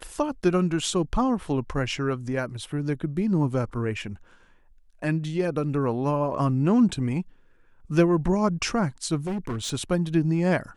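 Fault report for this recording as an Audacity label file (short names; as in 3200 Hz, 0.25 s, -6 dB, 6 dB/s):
9.260000	9.740000	clipped -25.5 dBFS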